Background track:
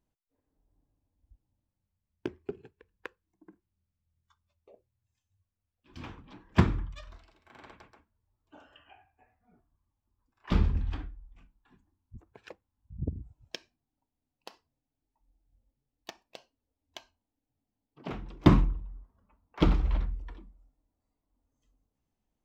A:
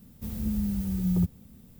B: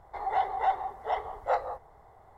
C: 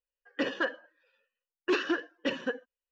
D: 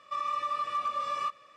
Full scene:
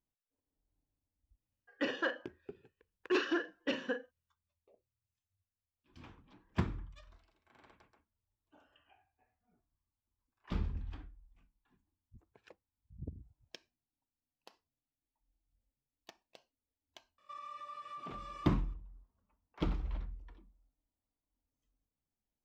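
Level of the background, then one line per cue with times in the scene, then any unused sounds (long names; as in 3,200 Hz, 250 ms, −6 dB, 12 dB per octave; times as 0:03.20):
background track −11 dB
0:01.42: mix in C −4.5 dB + double-tracking delay 38 ms −9 dB
0:17.18: mix in D −13.5 dB + brickwall limiter −27 dBFS
not used: A, B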